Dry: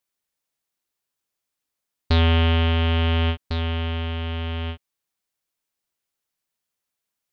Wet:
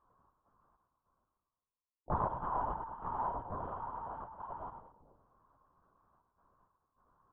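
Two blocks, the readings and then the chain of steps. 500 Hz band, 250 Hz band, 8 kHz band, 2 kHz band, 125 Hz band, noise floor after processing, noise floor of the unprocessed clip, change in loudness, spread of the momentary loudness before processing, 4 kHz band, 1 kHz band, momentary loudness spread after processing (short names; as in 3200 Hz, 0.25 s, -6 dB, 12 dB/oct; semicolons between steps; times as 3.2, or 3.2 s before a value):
-14.5 dB, -22.0 dB, n/a, -25.5 dB, -26.5 dB, under -85 dBFS, -83 dBFS, -17.0 dB, 11 LU, under -40 dB, -4.0 dB, 10 LU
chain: spectral limiter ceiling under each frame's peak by 15 dB; elliptic low-pass 880 Hz, stop band 60 dB; notches 50/100/150/200/250/300/350/400/450 Hz; spectral gate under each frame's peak -10 dB weak; reverse; upward compressor, threshold -48 dBFS; reverse; chorus voices 6, 0.76 Hz, delay 19 ms, depth 3.3 ms; step gate "xx.xx..xxxxxx" 99 bpm -12 dB; on a send: feedback echo 0.106 s, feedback 39%, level -7.5 dB; on the sum: LPC vocoder at 8 kHz whisper; Doppler distortion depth 0.39 ms; gain +8 dB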